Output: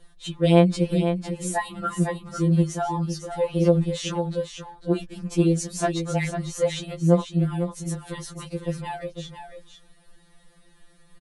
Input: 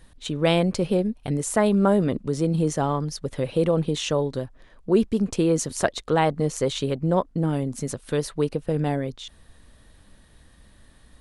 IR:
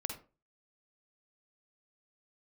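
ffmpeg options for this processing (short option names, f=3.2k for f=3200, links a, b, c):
-filter_complex "[0:a]asplit=2[a][b];[b]aecho=0:1:500:0.376[c];[a][c]amix=inputs=2:normalize=0,afftfilt=real='re*2.83*eq(mod(b,8),0)':imag='im*2.83*eq(mod(b,8),0)':win_size=2048:overlap=0.75"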